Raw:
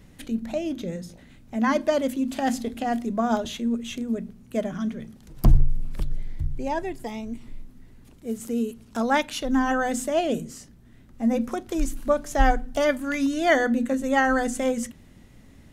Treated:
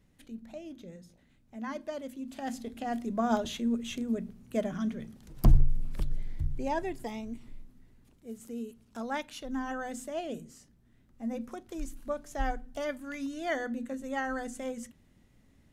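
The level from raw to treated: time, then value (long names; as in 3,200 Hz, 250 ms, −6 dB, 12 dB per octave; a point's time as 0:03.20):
0:02.08 −15.5 dB
0:03.33 −4 dB
0:06.99 −4 dB
0:08.27 −12.5 dB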